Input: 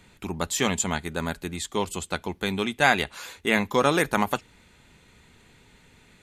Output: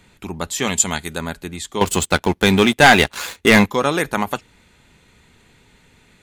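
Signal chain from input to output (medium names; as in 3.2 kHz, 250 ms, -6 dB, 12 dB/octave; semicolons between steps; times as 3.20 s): 0.67–1.18 s: treble shelf 3.2 kHz +10 dB; 1.81–3.66 s: waveshaping leveller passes 3; trim +2.5 dB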